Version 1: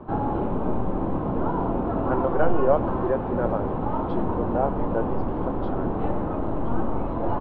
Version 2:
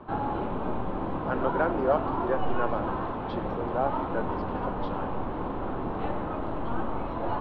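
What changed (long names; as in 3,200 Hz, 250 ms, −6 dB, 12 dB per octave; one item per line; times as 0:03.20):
speech: entry −0.80 s
master: add tilt shelving filter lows −7 dB, about 1,200 Hz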